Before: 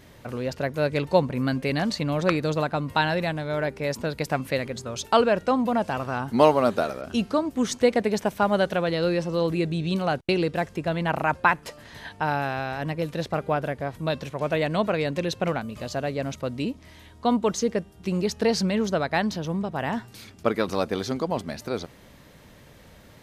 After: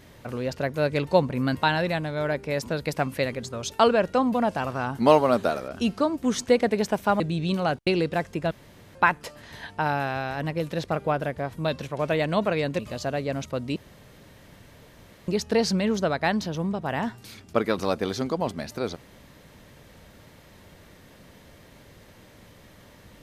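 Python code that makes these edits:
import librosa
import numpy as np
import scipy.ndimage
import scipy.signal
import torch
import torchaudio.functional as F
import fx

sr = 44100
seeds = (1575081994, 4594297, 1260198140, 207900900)

y = fx.edit(x, sr, fx.cut(start_s=1.55, length_s=1.33),
    fx.cut(start_s=8.53, length_s=1.09),
    fx.room_tone_fill(start_s=10.93, length_s=0.44),
    fx.cut(start_s=15.21, length_s=0.48),
    fx.room_tone_fill(start_s=16.66, length_s=1.52), tone=tone)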